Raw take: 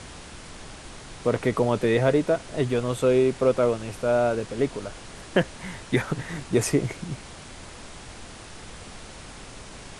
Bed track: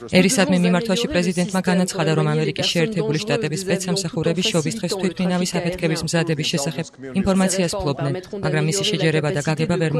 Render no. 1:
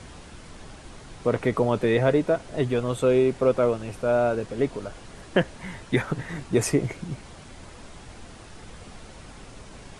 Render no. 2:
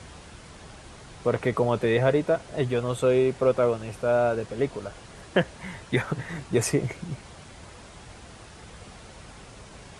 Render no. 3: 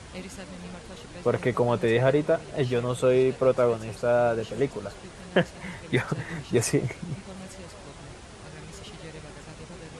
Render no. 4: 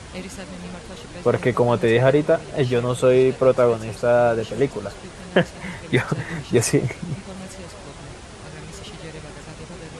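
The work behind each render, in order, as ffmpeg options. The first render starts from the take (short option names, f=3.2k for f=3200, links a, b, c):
-af "afftdn=nr=6:nf=-43"
-af "highpass=43,equalizer=f=270:t=o:w=0.79:g=-4"
-filter_complex "[1:a]volume=-25dB[a];[0:a][a]amix=inputs=2:normalize=0"
-af "volume=5.5dB,alimiter=limit=-2dB:level=0:latency=1"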